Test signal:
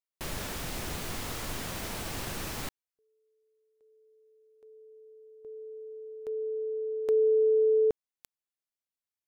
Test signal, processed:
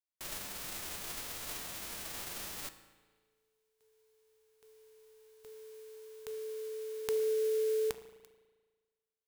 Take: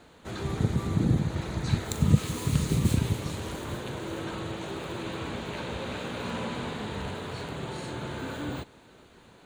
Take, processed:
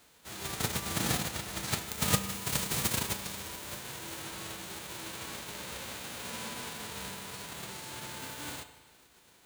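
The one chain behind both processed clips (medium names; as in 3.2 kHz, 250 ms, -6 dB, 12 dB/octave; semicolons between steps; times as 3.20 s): formants flattened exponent 0.3; feedback comb 65 Hz, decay 0.91 s, harmonics odd, mix 60%; spring tank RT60 1.5 s, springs 36 ms, chirp 30 ms, DRR 12 dB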